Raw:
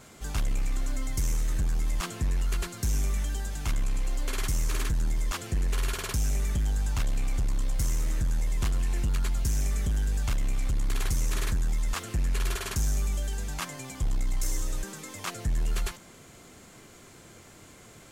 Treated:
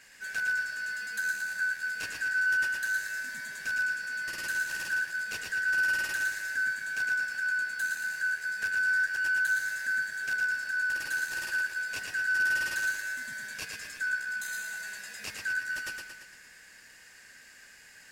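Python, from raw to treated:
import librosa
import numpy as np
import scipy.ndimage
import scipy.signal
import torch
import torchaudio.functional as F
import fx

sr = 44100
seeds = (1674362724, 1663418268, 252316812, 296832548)

p1 = fx.band_shuffle(x, sr, order='3142')
p2 = np.clip(p1, -10.0 ** (-31.5 / 20.0), 10.0 ** (-31.5 / 20.0))
p3 = p1 + (p2 * librosa.db_to_amplitude(-8.0))
p4 = fx.echo_feedback(p3, sr, ms=114, feedback_pct=54, wet_db=-4)
y = p4 * librosa.db_to_amplitude(-7.5)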